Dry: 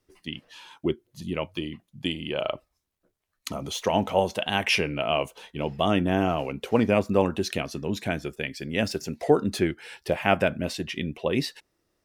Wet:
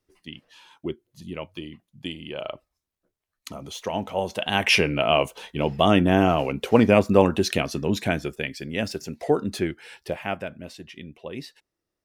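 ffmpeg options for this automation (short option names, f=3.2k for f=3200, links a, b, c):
-af "volume=5dB,afade=t=in:st=4.16:d=0.63:silence=0.334965,afade=t=out:st=7.93:d=0.88:silence=0.473151,afade=t=out:st=9.94:d=0.47:silence=0.375837"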